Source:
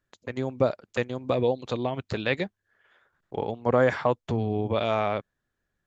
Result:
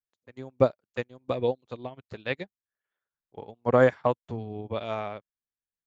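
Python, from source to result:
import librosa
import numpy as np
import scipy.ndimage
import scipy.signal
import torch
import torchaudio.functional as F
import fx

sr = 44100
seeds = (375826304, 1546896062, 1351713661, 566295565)

y = fx.upward_expand(x, sr, threshold_db=-38.0, expansion=2.5)
y = y * 10.0 ** (3.5 / 20.0)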